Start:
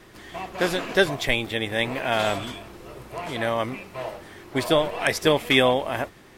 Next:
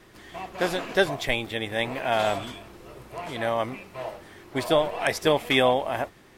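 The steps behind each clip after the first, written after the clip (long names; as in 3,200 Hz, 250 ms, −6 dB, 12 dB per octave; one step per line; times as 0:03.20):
dynamic equaliser 750 Hz, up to +5 dB, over −33 dBFS, Q 1.7
level −3.5 dB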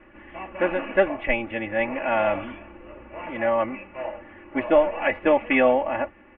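Chebyshev low-pass filter 2,800 Hz, order 6
comb filter 3.5 ms, depth 95%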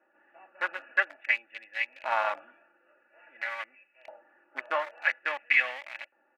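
adaptive Wiener filter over 41 samples
auto-filter high-pass saw up 0.49 Hz 980–2,400 Hz
level −3 dB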